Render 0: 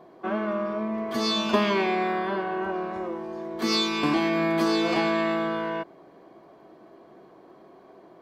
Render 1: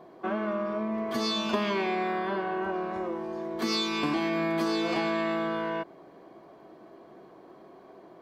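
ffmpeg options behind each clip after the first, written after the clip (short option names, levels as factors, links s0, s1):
-af "acompressor=threshold=0.0398:ratio=2"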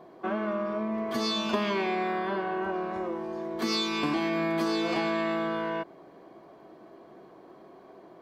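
-af anull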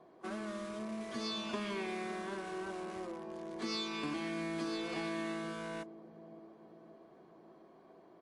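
-filter_complex "[0:a]acrossover=split=660|880[s0][s1][s2];[s0]aecho=1:1:565|1130|1695|2260|2825|3390:0.211|0.118|0.0663|0.0371|0.0208|0.0116[s3];[s1]aeval=exprs='(mod(119*val(0)+1,2)-1)/119':c=same[s4];[s3][s4][s2]amix=inputs=3:normalize=0,volume=0.355" -ar 24000 -c:a libmp3lame -b:a 48k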